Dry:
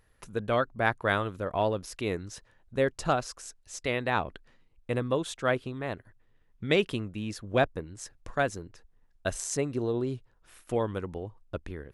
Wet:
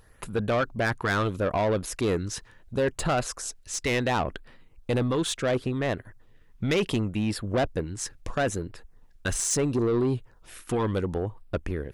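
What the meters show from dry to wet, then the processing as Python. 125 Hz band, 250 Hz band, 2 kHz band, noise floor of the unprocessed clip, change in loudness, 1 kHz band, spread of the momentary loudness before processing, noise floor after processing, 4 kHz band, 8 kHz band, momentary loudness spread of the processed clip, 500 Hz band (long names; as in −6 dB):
+5.5 dB, +5.5 dB, +1.0 dB, −65 dBFS, +3.0 dB, +1.0 dB, 14 LU, −56 dBFS, +4.0 dB, +8.0 dB, 10 LU, +2.5 dB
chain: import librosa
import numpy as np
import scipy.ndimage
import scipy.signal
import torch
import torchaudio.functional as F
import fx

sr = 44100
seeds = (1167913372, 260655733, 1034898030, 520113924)

p1 = fx.over_compress(x, sr, threshold_db=-29.0, ratio=-0.5)
p2 = x + F.gain(torch.from_numpy(p1), -2.0).numpy()
p3 = fx.filter_lfo_notch(p2, sr, shape='sine', hz=0.72, low_hz=560.0, high_hz=6600.0, q=2.5)
p4 = 10.0 ** (-22.5 / 20.0) * np.tanh(p3 / 10.0 ** (-22.5 / 20.0))
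y = F.gain(torch.from_numpy(p4), 3.5).numpy()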